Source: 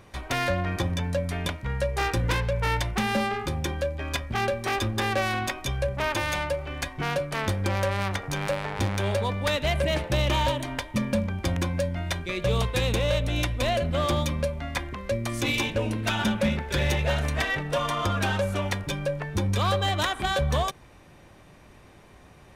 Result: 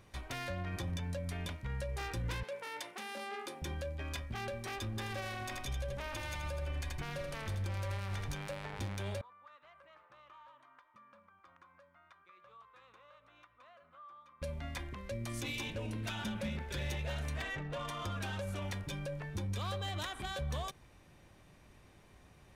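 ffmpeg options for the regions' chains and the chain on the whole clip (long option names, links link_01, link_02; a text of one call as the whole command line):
ffmpeg -i in.wav -filter_complex "[0:a]asettb=1/sr,asplit=3[link_01][link_02][link_03];[link_01]atrim=end=2.434[link_04];[link_02]atrim=start=2.43:end=3.62,asetpts=PTS-STARTPTS,afade=type=in:duration=0.004:curve=qsin,afade=type=out:start_time=1.186:duration=0.004:curve=qsin,highpass=frequency=290:width=0.5412,highpass=frequency=290:width=1.3066,equalizer=frequency=9700:width=5.8:gain=5[link_05];[link_03]atrim=start=3.616[link_06];[link_04][link_05]acrossfade=duration=0.004:curve1=hsin:curve2=qsin[link_07];[link_07][link_06]acrossfade=duration=0.004:curve1=qsin:curve2=hsin,asettb=1/sr,asplit=3[link_08][link_09][link_10];[link_08]atrim=end=4.904[link_11];[link_09]atrim=start=4.9:end=8.35,asetpts=PTS-STARTPTS,afade=type=in:duration=0.004:curve=qsin,afade=type=out:start_time=3.446:duration=0.004:curve=qsin,asubboost=boost=3.5:cutoff=100,aecho=1:1:81|162|243|324|405|486:0.398|0.207|0.108|0.056|0.0291|0.0151,atrim=end_sample=152145[link_12];[link_10]atrim=start=8.346[link_13];[link_11][link_12]acrossfade=duration=0.004:curve1=hsin:curve2=qsin[link_14];[link_14][link_13]acrossfade=duration=0.004:curve1=qsin:curve2=hsin,asettb=1/sr,asplit=3[link_15][link_16][link_17];[link_15]atrim=end=9.214[link_18];[link_16]atrim=start=9.21:end=14.42,asetpts=PTS-STARTPTS,afade=type=in:duration=0.004:curve=qsin,afade=type=out:start_time=5.206:duration=0.004:curve=qsin,bandpass=frequency=1200:width_type=q:width=6.6,acompressor=threshold=-50dB:ratio=2:attack=3.2:release=140:knee=1:detection=peak[link_19];[link_17]atrim=start=14.416[link_20];[link_18][link_19]acrossfade=duration=0.004:curve1=hsin:curve2=qsin[link_21];[link_21][link_20]acrossfade=duration=0.004:curve1=qsin:curve2=hsin,asettb=1/sr,asplit=3[link_22][link_23][link_24];[link_22]atrim=end=17.404[link_25];[link_23]atrim=start=17.4:end=17.88,asetpts=PTS-STARTPTS,afade=type=in:duration=0.004:curve=qsin,afade=type=out:start_time=0.476:duration=0.004:curve=qsin,bandreject=frequency=5400:width=5.1,adynamicsmooth=sensitivity=3.5:basefreq=2600[link_26];[link_24]atrim=start=17.876[link_27];[link_25][link_26]acrossfade=duration=0.004:curve1=hsin:curve2=qsin[link_28];[link_28][link_27]acrossfade=duration=0.004:curve1=qsin:curve2=hsin,alimiter=limit=-22.5dB:level=0:latency=1:release=25,equalizer=frequency=650:width=0.31:gain=-4,volume=-7dB" out.wav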